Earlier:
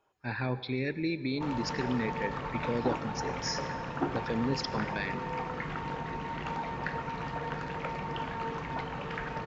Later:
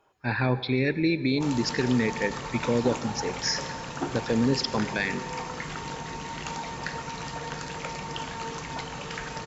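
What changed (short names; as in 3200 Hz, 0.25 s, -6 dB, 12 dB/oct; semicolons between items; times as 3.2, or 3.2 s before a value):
speech +7.5 dB; background: remove LPF 2200 Hz 12 dB/oct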